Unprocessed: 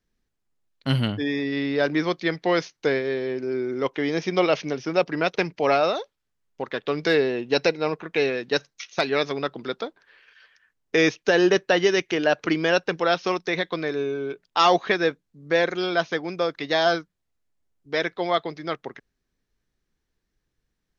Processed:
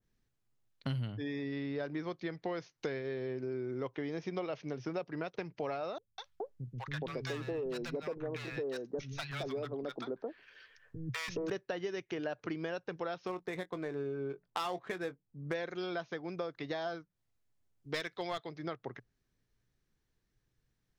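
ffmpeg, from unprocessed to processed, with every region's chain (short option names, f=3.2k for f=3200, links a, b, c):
-filter_complex "[0:a]asettb=1/sr,asplit=3[a][b][c];[a]atrim=end=5.984[d];[b]atrim=start=5.98:end=11.5,asetpts=PTS-STARTPTS,afade=t=in:d=0.004:c=qsin,afade=t=out:st=5.516:d=0.004:c=qsin,lowshelf=f=100:g=10,volume=19dB,asoftclip=hard,volume=-19dB,acrossover=split=190|890[e][f][g];[g]adelay=200[h];[f]adelay=420[i];[e][i][h]amix=inputs=3:normalize=0,atrim=end_sample=243432[j];[c]atrim=start=11.496[k];[d][j]acrossfade=d=0.004:c1=hsin:c2=qsin[l];[l][k]acrossfade=d=0.004:c1=qsin:c2=hsin,asettb=1/sr,asplit=3[m][n][o];[m]atrim=end=13.274[p];[n]atrim=start=13.27:end=15.54,asetpts=PTS-STARTPTS,afade=t=in:d=0.004:c=qsin,afade=t=out:st=2.266:d=0.004:c=qsin,adynamicsmooth=sensitivity=4:basefreq=1.5k,asplit=2[q][r];[r]adelay=22,volume=-13dB[s];[q][s]amix=inputs=2:normalize=0,atrim=end_sample=100107[t];[o]atrim=start=15.536[u];[p][t]acrossfade=d=0.004:c1=hsin:c2=qsin[v];[v][u]acrossfade=d=0.004:c1=qsin:c2=hsin,asettb=1/sr,asplit=3[w][x][y];[w]atrim=end=17.944[z];[x]atrim=start=17.94:end=18.49,asetpts=PTS-STARTPTS,afade=t=in:d=0.004:c=qsin,afade=t=out:st=0.546:d=0.004:c=qsin,highshelf=f=2.2k:g=12,aeval=exprs='clip(val(0),-1,0.133)':c=same[aa];[y]atrim=start=18.486[ab];[z][aa]acrossfade=d=0.004:c1=hsin:c2=qsin[ac];[ac][ab]acrossfade=d=0.004:c1=qsin:c2=hsin,equalizer=f=120:t=o:w=0.43:g=10.5,acompressor=threshold=-32dB:ratio=6,adynamicequalizer=threshold=0.00251:dfrequency=1700:dqfactor=0.7:tfrequency=1700:tqfactor=0.7:attack=5:release=100:ratio=0.375:range=3:mode=cutabove:tftype=highshelf,volume=-3dB"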